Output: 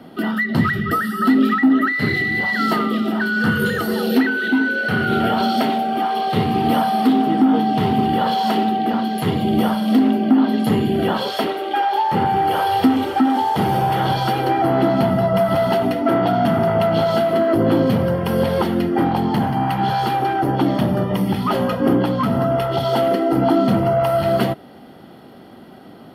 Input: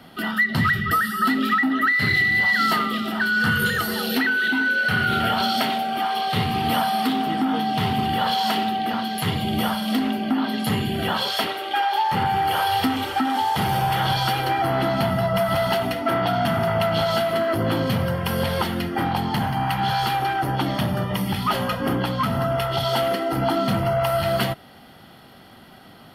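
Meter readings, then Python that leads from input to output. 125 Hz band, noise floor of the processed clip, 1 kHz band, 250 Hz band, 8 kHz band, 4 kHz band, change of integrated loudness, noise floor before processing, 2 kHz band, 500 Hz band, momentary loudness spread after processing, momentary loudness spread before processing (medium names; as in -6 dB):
+3.0 dB, -41 dBFS, +3.0 dB, +8.0 dB, no reading, -3.0 dB, +3.5 dB, -46 dBFS, -1.5 dB, +6.0 dB, 4 LU, 5 LU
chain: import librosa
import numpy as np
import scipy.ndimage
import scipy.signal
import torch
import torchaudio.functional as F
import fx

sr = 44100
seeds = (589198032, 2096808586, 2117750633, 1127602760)

y = fx.peak_eq(x, sr, hz=340.0, db=14.0, octaves=2.6)
y = y * 10.0 ** (-4.0 / 20.0)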